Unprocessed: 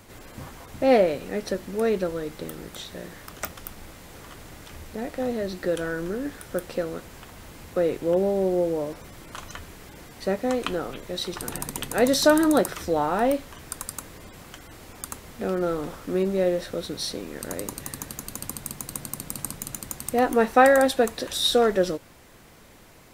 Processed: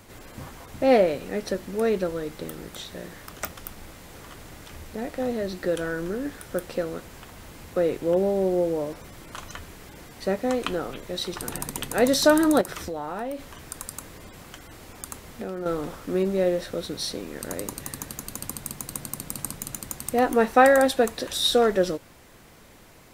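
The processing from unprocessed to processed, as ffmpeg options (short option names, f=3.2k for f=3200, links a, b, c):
-filter_complex "[0:a]asettb=1/sr,asplit=3[a][b][c];[a]atrim=end=12.614[d];[b]atrim=start=12.61:end=15.66,asetpts=PTS-STARTPTS,afade=t=in:d=0.004:c=qsin,afade=t=out:st=3.046:d=0.004:c=qsin,acompressor=threshold=-28dB:ratio=6:attack=3.2:release=140:knee=1:detection=peak[e];[c]atrim=start=15.656[f];[d][e]acrossfade=d=0.004:c1=hsin:c2=qsin[g];[g][f]acrossfade=d=0.004:c1=qsin:c2=hsin"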